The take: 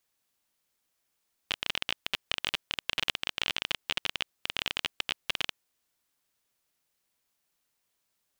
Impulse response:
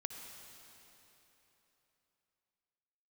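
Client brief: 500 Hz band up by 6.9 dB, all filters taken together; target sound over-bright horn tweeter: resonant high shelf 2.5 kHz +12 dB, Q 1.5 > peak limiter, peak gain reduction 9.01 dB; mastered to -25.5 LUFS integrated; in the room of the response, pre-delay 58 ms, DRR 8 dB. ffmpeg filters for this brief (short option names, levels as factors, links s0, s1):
-filter_complex "[0:a]equalizer=f=500:t=o:g=9,asplit=2[s0][s1];[1:a]atrim=start_sample=2205,adelay=58[s2];[s1][s2]afir=irnorm=-1:irlink=0,volume=0.473[s3];[s0][s3]amix=inputs=2:normalize=0,highshelf=f=2500:t=q:w=1.5:g=12,volume=0.841,alimiter=limit=0.447:level=0:latency=1"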